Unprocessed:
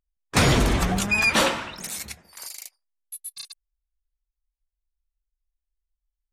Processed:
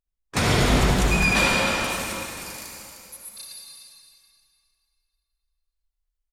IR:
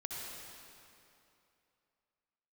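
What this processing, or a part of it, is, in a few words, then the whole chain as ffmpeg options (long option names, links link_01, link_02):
cave: -filter_complex "[0:a]aecho=1:1:306:0.376[link_01];[1:a]atrim=start_sample=2205[link_02];[link_01][link_02]afir=irnorm=-1:irlink=0"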